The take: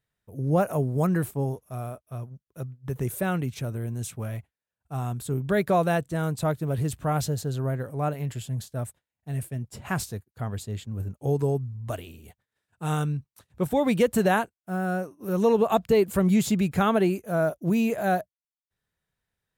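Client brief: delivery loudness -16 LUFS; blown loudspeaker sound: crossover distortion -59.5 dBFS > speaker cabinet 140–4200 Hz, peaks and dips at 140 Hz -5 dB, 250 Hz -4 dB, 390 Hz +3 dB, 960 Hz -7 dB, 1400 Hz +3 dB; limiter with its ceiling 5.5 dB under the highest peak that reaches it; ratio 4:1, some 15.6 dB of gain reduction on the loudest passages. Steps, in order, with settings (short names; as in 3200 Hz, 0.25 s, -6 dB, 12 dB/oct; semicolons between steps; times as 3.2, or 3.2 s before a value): compressor 4:1, threshold -36 dBFS; limiter -30 dBFS; crossover distortion -59.5 dBFS; speaker cabinet 140–4200 Hz, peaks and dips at 140 Hz -5 dB, 250 Hz -4 dB, 390 Hz +3 dB, 960 Hz -7 dB, 1400 Hz +3 dB; gain +26.5 dB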